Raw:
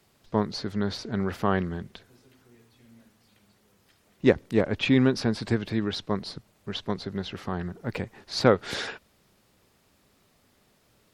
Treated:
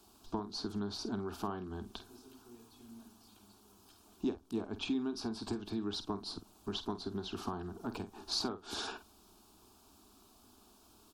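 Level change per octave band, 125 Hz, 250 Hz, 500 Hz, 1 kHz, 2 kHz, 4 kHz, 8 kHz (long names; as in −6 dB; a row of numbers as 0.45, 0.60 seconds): −16.5, −11.0, −15.5, −10.5, −17.0, −6.5, −4.0 decibels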